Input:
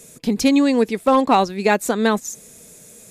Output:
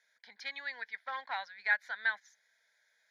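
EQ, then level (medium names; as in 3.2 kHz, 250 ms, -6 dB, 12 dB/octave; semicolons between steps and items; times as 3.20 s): dynamic bell 2.4 kHz, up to +7 dB, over -34 dBFS, Q 0.86; ladder band-pass 1.8 kHz, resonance 50%; static phaser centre 1.8 kHz, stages 8; -2.5 dB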